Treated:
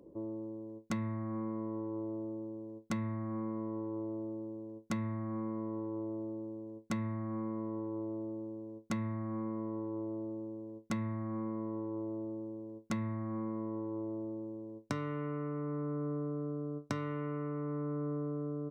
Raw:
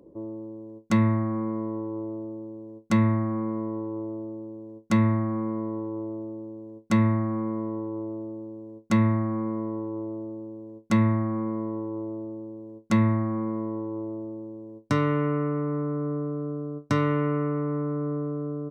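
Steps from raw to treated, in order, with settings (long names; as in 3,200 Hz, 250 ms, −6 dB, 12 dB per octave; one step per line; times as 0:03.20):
downward compressor 6 to 1, threshold −30 dBFS, peak gain reduction 12.5 dB
level −4 dB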